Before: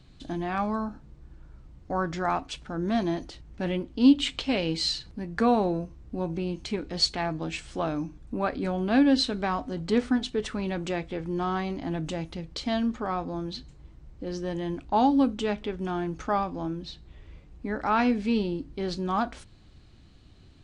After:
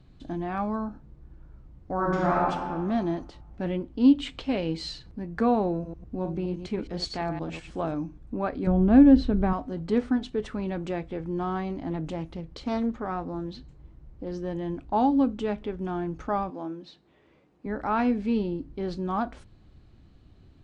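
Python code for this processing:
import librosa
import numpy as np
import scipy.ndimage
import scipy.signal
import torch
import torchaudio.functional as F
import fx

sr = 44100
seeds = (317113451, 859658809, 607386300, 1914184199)

y = fx.reverb_throw(x, sr, start_s=1.95, length_s=0.56, rt60_s=1.6, drr_db=-4.5)
y = fx.reverse_delay(y, sr, ms=104, wet_db=-8, at=(5.73, 7.94))
y = fx.riaa(y, sr, side='playback', at=(8.67, 9.53))
y = fx.doppler_dist(y, sr, depth_ms=0.31, at=(11.9, 14.31))
y = fx.highpass(y, sr, hz=280.0, slope=12, at=(16.5, 17.66))
y = fx.high_shelf(y, sr, hz=2200.0, db=-11.5)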